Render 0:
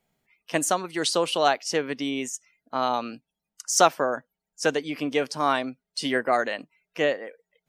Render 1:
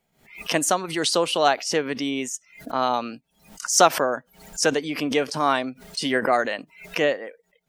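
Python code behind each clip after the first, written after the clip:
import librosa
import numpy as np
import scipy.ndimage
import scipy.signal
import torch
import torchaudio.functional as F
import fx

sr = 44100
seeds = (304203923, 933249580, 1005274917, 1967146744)

y = fx.pre_swell(x, sr, db_per_s=120.0)
y = y * librosa.db_to_amplitude(2.0)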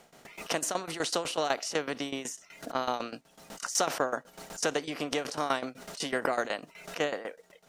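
y = fx.bin_compress(x, sr, power=0.6)
y = fx.tremolo_shape(y, sr, shape='saw_down', hz=8.0, depth_pct=85)
y = y * librosa.db_to_amplitude(-8.5)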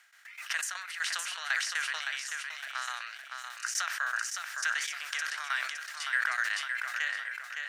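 y = fx.ladder_highpass(x, sr, hz=1500.0, resonance_pct=65)
y = fx.echo_feedback(y, sr, ms=563, feedback_pct=43, wet_db=-5.5)
y = fx.sustainer(y, sr, db_per_s=48.0)
y = y * librosa.db_to_amplitude(6.5)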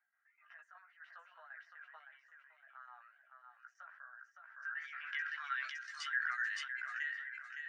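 y = fx.spec_expand(x, sr, power=1.7)
y = fx.chorus_voices(y, sr, voices=4, hz=0.27, base_ms=15, depth_ms=1.3, mix_pct=40)
y = fx.filter_sweep_lowpass(y, sr, from_hz=680.0, to_hz=7500.0, start_s=4.38, end_s=5.97, q=1.3)
y = y * librosa.db_to_amplitude(-5.0)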